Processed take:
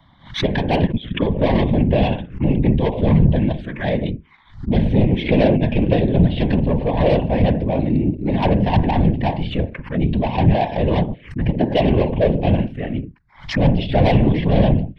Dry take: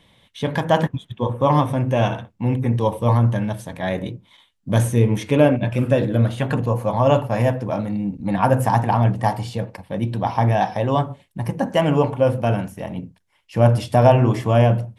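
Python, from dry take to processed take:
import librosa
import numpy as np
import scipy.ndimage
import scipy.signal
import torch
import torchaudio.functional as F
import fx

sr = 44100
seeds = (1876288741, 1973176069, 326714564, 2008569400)

y = scipy.signal.sosfilt(scipy.signal.butter(4, 3600.0, 'lowpass', fs=sr, output='sos'), x)
y = 10.0 ** (-16.5 / 20.0) * np.tanh(y / 10.0 ** (-16.5 / 20.0))
y = fx.whisperise(y, sr, seeds[0])
y = fx.env_phaser(y, sr, low_hz=440.0, high_hz=1300.0, full_db=-22.5)
y = fx.pre_swell(y, sr, db_per_s=150.0)
y = y * 10.0 ** (7.0 / 20.0)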